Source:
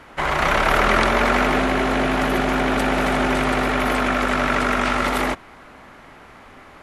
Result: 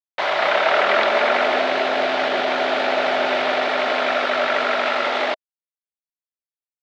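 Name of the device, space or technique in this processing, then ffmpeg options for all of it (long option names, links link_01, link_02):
hand-held game console: -af "acrusher=bits=3:mix=0:aa=0.000001,highpass=470,equalizer=frequency=630:width_type=q:width=4:gain=8,equalizer=frequency=1100:width_type=q:width=4:gain=-4,equalizer=frequency=3700:width_type=q:width=4:gain=3,lowpass=frequency=4000:width=0.5412,lowpass=frequency=4000:width=1.3066"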